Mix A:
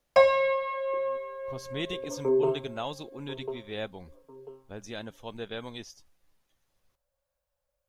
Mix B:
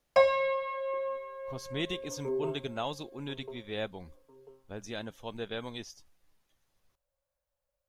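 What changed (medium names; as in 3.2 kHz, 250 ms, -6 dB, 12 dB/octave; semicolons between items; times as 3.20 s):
second sound -8.5 dB; reverb: off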